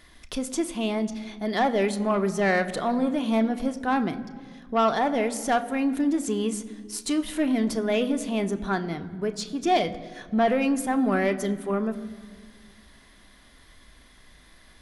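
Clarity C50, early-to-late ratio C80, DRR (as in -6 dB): 15.0 dB, 16.0 dB, 7.5 dB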